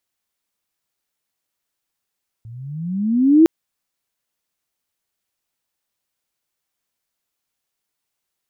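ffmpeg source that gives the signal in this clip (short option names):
-f lavfi -i "aevalsrc='pow(10,(-5.5+28.5*(t/1.01-1))/20)*sin(2*PI*109*1.01/(19.5*log(2)/12)*(exp(19.5*log(2)/12*t/1.01)-1))':d=1.01:s=44100"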